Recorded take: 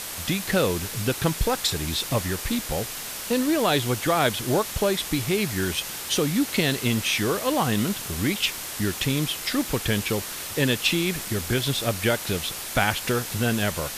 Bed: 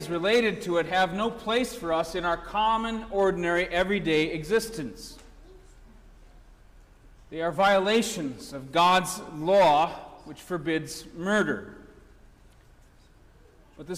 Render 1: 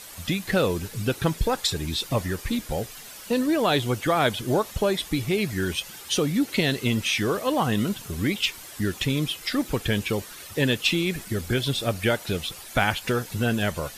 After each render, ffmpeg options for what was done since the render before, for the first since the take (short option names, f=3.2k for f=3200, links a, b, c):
-af "afftdn=nr=11:nf=-34"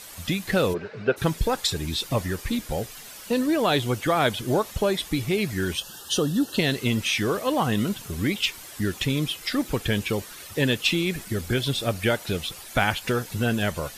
-filter_complex "[0:a]asplit=3[a][b][c];[a]afade=t=out:st=0.73:d=0.02[d];[b]highpass=190,equalizer=f=290:t=q:w=4:g=-8,equalizer=f=420:t=q:w=4:g=8,equalizer=f=620:t=q:w=4:g=9,equalizer=f=1.5k:t=q:w=4:g=7,equalizer=f=3.3k:t=q:w=4:g=-9,lowpass=f=3.6k:w=0.5412,lowpass=f=3.6k:w=1.3066,afade=t=in:st=0.73:d=0.02,afade=t=out:st=1.16:d=0.02[e];[c]afade=t=in:st=1.16:d=0.02[f];[d][e][f]amix=inputs=3:normalize=0,asettb=1/sr,asplit=3[g][h][i];[g]atrim=end=5.774[j];[h]atrim=start=5.77:end=6.59,asetpts=PTS-STARTPTS,afade=t=in:d=0.004:c=qsin,afade=t=out:st=0.816:d=0.004:c=qsin,asuperstop=centerf=2200:order=12:qfactor=2.8[k];[i]atrim=start=6.586[l];[j][k]acrossfade=d=0.004:c1=hsin:c2=qsin[m];[m][l]acrossfade=d=0.004:c1=qsin:c2=hsin"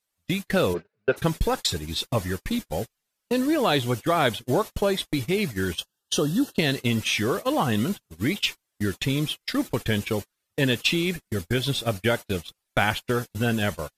-af "agate=range=-39dB:threshold=-28dB:ratio=16:detection=peak"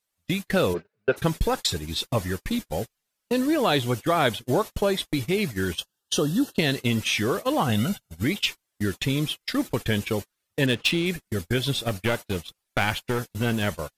-filter_complex "[0:a]asettb=1/sr,asplit=3[a][b][c];[a]atrim=end=7.694[d];[b]atrim=start=7.69:end=8.24,asetpts=PTS-STARTPTS,afade=t=in:d=0.004:c=qsin,afade=t=out:st=0.546:d=0.004:c=qsin,aecho=1:1:1.4:0.65,atrim=end_sample=24255[e];[c]atrim=start=8.236[f];[d][e]acrossfade=d=0.004:c1=hsin:c2=qsin[g];[g][f]acrossfade=d=0.004:c1=qsin:c2=hsin,asettb=1/sr,asplit=3[h][i][j];[h]atrim=end=10.664[k];[i]atrim=start=10.66:end=11.06,asetpts=PTS-STARTPTS,afade=t=in:d=0.004:c=qsin,afade=t=out:st=0.396:d=0.004:c=qsin,adynamicsmooth=sensitivity=4:basefreq=2.6k[l];[j]atrim=start=11.056[m];[k][l]acrossfade=d=0.004:c1=hsin:c2=qsin[n];[n][m]acrossfade=d=0.004:c1=qsin:c2=hsin,asettb=1/sr,asplit=3[o][p][q];[o]atrim=end=11.884[r];[p]atrim=start=11.88:end=13.67,asetpts=PTS-STARTPTS,afade=t=in:d=0.004:c=qsin,afade=t=out:st=1.786:d=0.004:c=qsin,aeval=exprs='clip(val(0),-1,0.0562)':c=same[s];[q]atrim=start=13.666[t];[r][s]acrossfade=d=0.004:c1=hsin:c2=qsin[u];[u][t]acrossfade=d=0.004:c1=qsin:c2=hsin"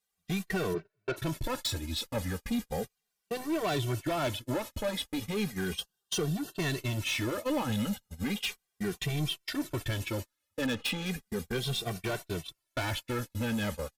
-filter_complex "[0:a]asoftclip=type=tanh:threshold=-24dB,asplit=2[a][b];[b]adelay=2.1,afreqshift=-0.35[c];[a][c]amix=inputs=2:normalize=1"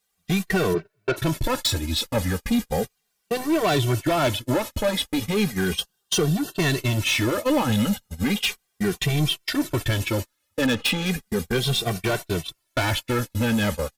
-af "volume=9.5dB"